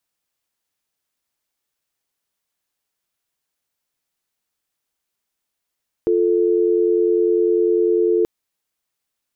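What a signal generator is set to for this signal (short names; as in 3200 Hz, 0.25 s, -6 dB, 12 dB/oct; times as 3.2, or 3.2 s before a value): call progress tone dial tone, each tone -16.5 dBFS 2.18 s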